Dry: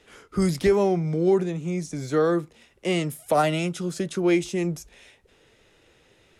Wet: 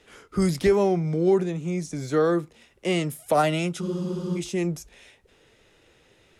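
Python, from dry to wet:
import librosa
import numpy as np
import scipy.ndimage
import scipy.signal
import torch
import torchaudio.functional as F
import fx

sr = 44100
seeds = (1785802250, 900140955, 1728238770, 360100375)

y = fx.spec_freeze(x, sr, seeds[0], at_s=3.82, hold_s=0.56)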